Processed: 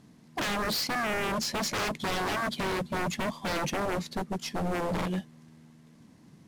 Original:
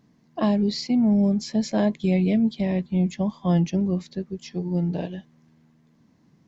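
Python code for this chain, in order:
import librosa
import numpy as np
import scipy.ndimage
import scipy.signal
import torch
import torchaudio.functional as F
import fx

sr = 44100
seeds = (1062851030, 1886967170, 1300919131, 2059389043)

y = fx.cvsd(x, sr, bps=64000)
y = 10.0 ** (-29.5 / 20.0) * (np.abs((y / 10.0 ** (-29.5 / 20.0) + 3.0) % 4.0 - 2.0) - 1.0)
y = F.gain(torch.from_numpy(y), 4.5).numpy()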